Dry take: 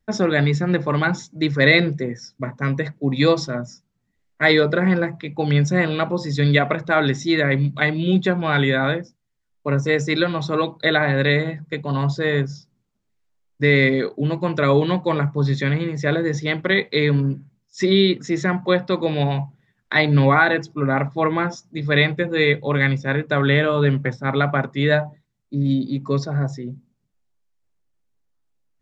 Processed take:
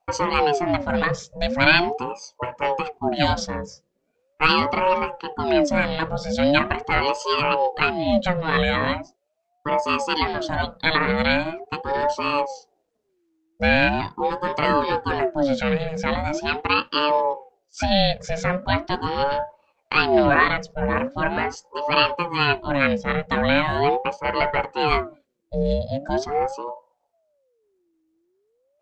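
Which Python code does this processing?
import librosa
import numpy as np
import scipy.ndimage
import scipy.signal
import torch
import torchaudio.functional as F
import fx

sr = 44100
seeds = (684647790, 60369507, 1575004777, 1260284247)

y = fx.dynamic_eq(x, sr, hz=460.0, q=0.93, threshold_db=-31.0, ratio=4.0, max_db=-6)
y = fx.ring_lfo(y, sr, carrier_hz=530.0, swing_pct=40, hz=0.41)
y = y * 10.0 ** (2.5 / 20.0)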